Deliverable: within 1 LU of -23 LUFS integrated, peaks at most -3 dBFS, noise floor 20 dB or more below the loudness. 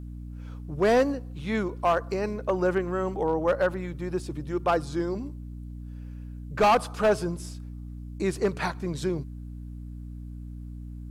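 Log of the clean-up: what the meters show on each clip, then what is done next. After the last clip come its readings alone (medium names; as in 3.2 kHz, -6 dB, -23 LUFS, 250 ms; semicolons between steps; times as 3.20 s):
clipped samples 0.7%; clipping level -16.0 dBFS; hum 60 Hz; highest harmonic 300 Hz; hum level -36 dBFS; loudness -27.0 LUFS; peak level -16.0 dBFS; loudness target -23.0 LUFS
-> clip repair -16 dBFS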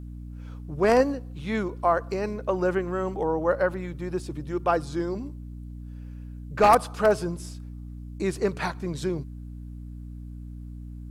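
clipped samples 0.0%; hum 60 Hz; highest harmonic 300 Hz; hum level -36 dBFS
-> de-hum 60 Hz, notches 5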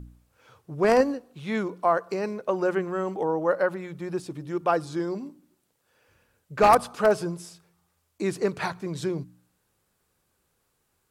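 hum not found; loudness -26.0 LUFS; peak level -6.5 dBFS; loudness target -23.0 LUFS
-> trim +3 dB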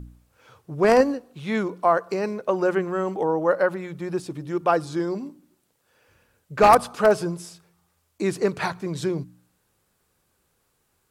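loudness -23.0 LUFS; peak level -3.5 dBFS; noise floor -70 dBFS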